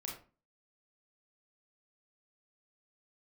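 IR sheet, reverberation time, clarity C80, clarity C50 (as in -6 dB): 0.35 s, 10.5 dB, 5.5 dB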